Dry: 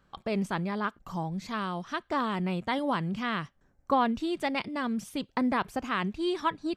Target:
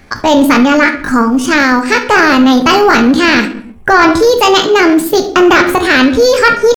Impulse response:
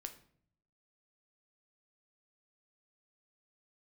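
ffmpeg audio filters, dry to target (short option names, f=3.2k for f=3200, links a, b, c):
-filter_complex "[1:a]atrim=start_sample=2205,afade=t=out:st=0.44:d=0.01,atrim=end_sample=19845[a];[0:a][a]afir=irnorm=-1:irlink=0,asetrate=62367,aresample=44100,atempo=0.707107,apsyclip=31dB,volume=-2dB"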